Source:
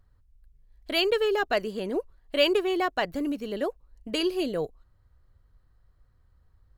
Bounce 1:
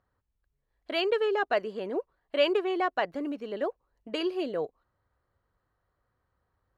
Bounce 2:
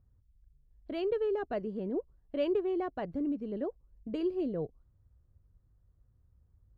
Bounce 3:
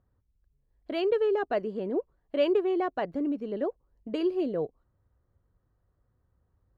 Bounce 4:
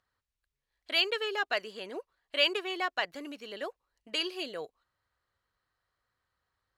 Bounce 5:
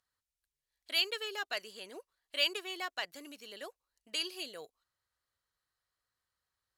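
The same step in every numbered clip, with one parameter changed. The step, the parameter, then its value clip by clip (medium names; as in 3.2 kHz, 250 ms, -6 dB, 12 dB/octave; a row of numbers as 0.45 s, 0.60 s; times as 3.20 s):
band-pass filter, frequency: 870 Hz, 120 Hz, 320 Hz, 2.9 kHz, 7.4 kHz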